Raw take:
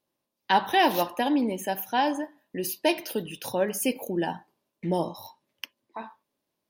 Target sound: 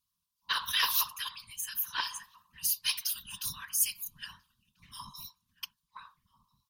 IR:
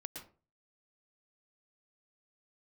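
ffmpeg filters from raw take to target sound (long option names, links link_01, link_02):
-filter_complex "[0:a]asplit=2[link_01][link_02];[link_02]adelay=1341,volume=-17dB,highshelf=frequency=4000:gain=-30.2[link_03];[link_01][link_03]amix=inputs=2:normalize=0,afftfilt=real='re*(1-between(b*sr/4096,150,1000))':imag='im*(1-between(b*sr/4096,150,1000))':win_size=4096:overlap=0.75,afftfilt=real='hypot(re,im)*cos(2*PI*random(0))':imag='hypot(re,im)*sin(2*PI*random(1))':win_size=512:overlap=0.75,acrossover=split=2800[link_04][link_05];[link_04]adynamicsmooth=sensitivity=1:basefreq=1100[link_06];[link_06][link_05]amix=inputs=2:normalize=0,adynamicequalizer=threshold=0.00447:dfrequency=2600:dqfactor=0.7:tfrequency=2600:tqfactor=0.7:attack=5:release=100:ratio=0.375:range=3:mode=boostabove:tftype=highshelf,volume=8dB"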